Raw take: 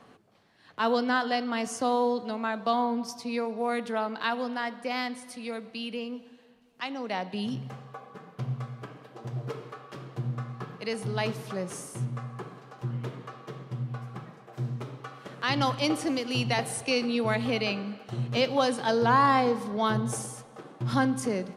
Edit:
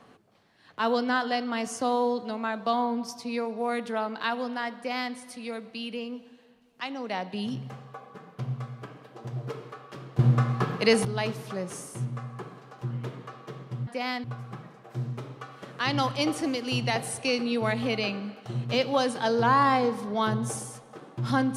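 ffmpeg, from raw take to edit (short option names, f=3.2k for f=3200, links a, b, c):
-filter_complex "[0:a]asplit=5[a][b][c][d][e];[a]atrim=end=10.192[f];[b]atrim=start=10.188:end=11.052,asetpts=PTS-STARTPTS,volume=11.5dB[g];[c]atrim=start=11.048:end=13.872[h];[d]atrim=start=4.768:end=5.142[i];[e]atrim=start=13.868[j];[f][g]acrossfade=d=0.004:c1=hsin:c2=hsin[k];[k][h]acrossfade=d=0.004:c1=hsin:c2=hsin[l];[l][i]acrossfade=d=0.004:c1=hsin:c2=hsin[m];[m][j]acrossfade=d=0.004:c1=hsin:c2=hsin"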